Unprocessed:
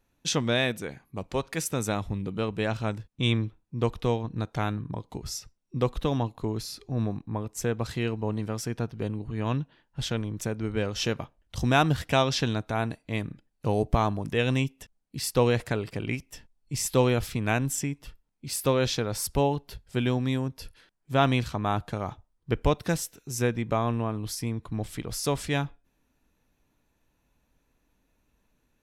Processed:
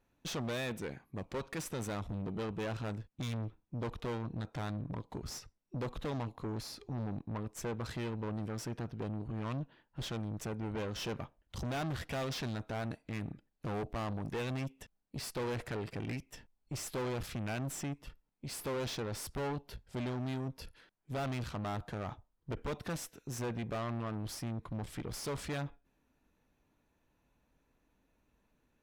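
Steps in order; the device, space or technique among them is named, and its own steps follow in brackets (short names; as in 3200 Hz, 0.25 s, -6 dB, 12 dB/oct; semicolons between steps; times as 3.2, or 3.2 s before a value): tube preamp driven hard (tube stage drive 34 dB, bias 0.5; low shelf 130 Hz -4 dB; high shelf 3300 Hz -8 dB); gain +1 dB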